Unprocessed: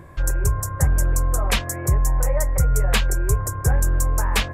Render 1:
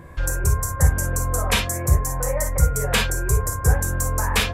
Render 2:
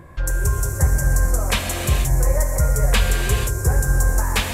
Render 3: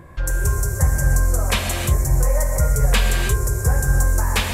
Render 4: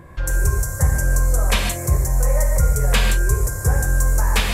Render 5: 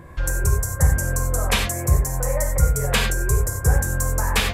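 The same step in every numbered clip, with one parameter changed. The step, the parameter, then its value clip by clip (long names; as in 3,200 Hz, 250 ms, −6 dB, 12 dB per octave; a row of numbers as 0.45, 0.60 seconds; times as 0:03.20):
reverb whose tail is shaped and stops, gate: 80, 510, 350, 180, 120 milliseconds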